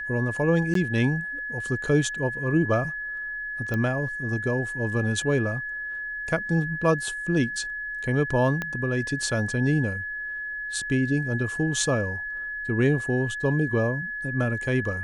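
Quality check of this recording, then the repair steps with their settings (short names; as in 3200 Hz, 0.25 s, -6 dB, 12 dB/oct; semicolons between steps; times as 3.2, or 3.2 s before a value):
tone 1700 Hz -30 dBFS
0.74–0.75 gap 13 ms
3.74 pop -17 dBFS
8.62 pop -15 dBFS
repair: de-click; notch 1700 Hz, Q 30; interpolate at 0.74, 13 ms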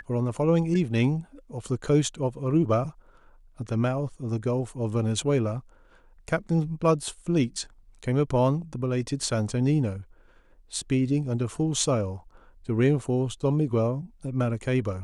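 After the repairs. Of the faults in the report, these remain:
8.62 pop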